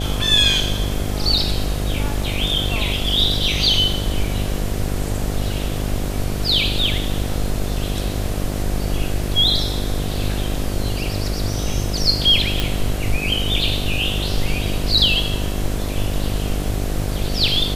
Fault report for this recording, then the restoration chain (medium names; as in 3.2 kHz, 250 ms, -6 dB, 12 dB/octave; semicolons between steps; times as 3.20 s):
buzz 50 Hz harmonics 15 -24 dBFS
12.60 s: pop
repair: de-click; de-hum 50 Hz, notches 15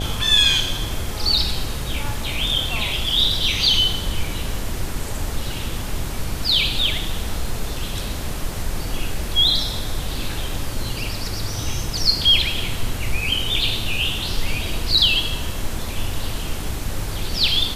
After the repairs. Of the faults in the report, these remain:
nothing left